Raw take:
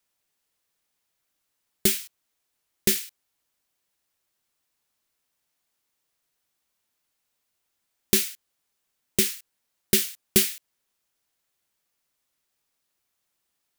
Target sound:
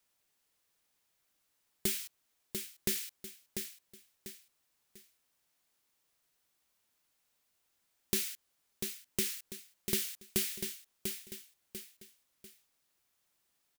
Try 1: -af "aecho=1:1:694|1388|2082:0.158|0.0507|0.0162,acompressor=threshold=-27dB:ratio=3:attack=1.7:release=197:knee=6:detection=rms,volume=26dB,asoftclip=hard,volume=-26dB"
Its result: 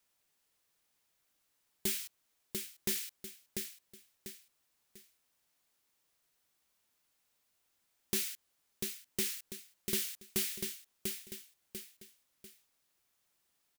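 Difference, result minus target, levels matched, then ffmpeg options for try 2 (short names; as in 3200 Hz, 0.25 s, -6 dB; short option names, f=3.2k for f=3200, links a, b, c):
overloaded stage: distortion +11 dB
-af "aecho=1:1:694|1388|2082:0.158|0.0507|0.0162,acompressor=threshold=-27dB:ratio=3:attack=1.7:release=197:knee=6:detection=rms,volume=19dB,asoftclip=hard,volume=-19dB"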